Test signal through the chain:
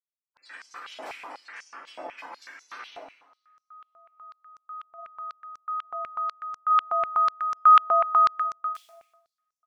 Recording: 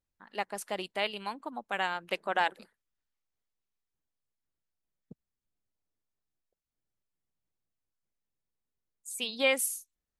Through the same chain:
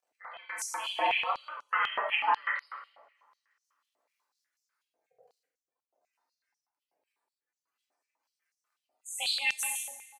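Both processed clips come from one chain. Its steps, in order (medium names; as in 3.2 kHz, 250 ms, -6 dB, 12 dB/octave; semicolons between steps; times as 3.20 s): companding laws mixed up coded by mu; band-stop 3.4 kHz, Q 9.8; spectral gate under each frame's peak -15 dB strong; treble shelf 10 kHz -7.5 dB; compression, threshold -28 dBFS; ring modulator 290 Hz; delay 138 ms -15.5 dB; two-slope reverb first 0.86 s, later 2.7 s, from -28 dB, DRR -4.5 dB; step-sequenced high-pass 8.1 Hz 690–5900 Hz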